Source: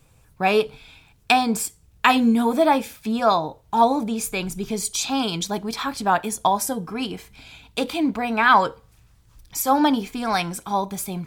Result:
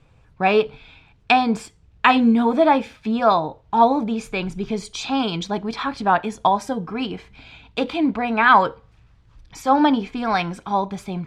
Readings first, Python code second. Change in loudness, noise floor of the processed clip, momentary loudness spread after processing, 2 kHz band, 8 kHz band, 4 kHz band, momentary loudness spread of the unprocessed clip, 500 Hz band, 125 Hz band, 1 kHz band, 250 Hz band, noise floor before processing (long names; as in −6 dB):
+1.5 dB, −55 dBFS, 11 LU, +1.5 dB, −12.5 dB, −1.5 dB, 10 LU, +2.0 dB, +2.0 dB, +2.0 dB, +2.0 dB, −57 dBFS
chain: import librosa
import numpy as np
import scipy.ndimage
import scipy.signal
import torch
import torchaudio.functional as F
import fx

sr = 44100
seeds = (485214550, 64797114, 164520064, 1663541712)

y = scipy.signal.sosfilt(scipy.signal.butter(2, 3400.0, 'lowpass', fs=sr, output='sos'), x)
y = F.gain(torch.from_numpy(y), 2.0).numpy()